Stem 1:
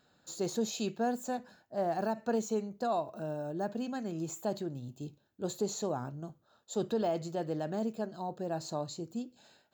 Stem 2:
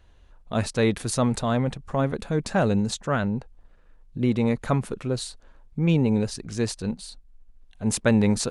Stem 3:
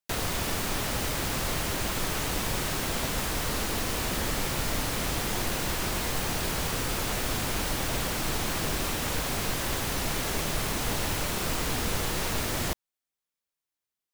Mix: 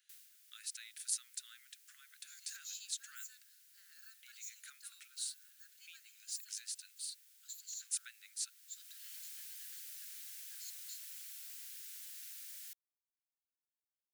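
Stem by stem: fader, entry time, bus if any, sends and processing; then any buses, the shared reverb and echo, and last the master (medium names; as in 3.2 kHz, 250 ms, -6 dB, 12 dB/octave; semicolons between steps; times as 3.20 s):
-14.5 dB, 2.00 s, no send, level rider gain up to 11 dB
-0.5 dB, 0.00 s, no send, compression 6:1, threshold -30 dBFS, peak gain reduction 14.5 dB
-17.0 dB, 0.00 s, no send, auto duck -15 dB, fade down 0.30 s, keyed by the second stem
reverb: none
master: steep high-pass 1.4 kHz 72 dB/octave; differentiator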